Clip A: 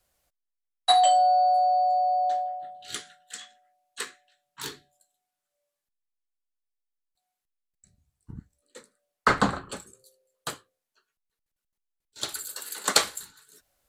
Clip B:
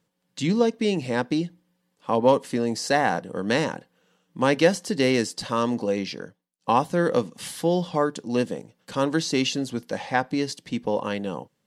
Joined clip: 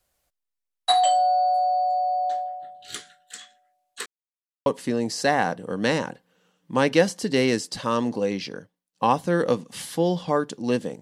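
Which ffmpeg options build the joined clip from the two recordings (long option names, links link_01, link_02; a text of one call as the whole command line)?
ffmpeg -i cue0.wav -i cue1.wav -filter_complex "[0:a]apad=whole_dur=11.01,atrim=end=11.01,asplit=2[link_01][link_02];[link_01]atrim=end=4.06,asetpts=PTS-STARTPTS,afade=type=out:start_time=4.056:duration=0.004:curve=hsin[link_03];[link_02]atrim=start=4.06:end=4.66,asetpts=PTS-STARTPTS,volume=0[link_04];[1:a]atrim=start=2.32:end=8.67,asetpts=PTS-STARTPTS,afade=type=in:duration=0.004:curve=hsin[link_05];[link_03][link_04][link_05]concat=n=3:v=0:a=1" out.wav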